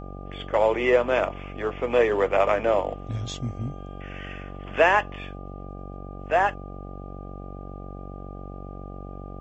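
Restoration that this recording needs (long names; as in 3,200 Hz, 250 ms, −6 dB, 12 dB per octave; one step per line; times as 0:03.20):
hum removal 47.3 Hz, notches 17
notch filter 1,200 Hz, Q 30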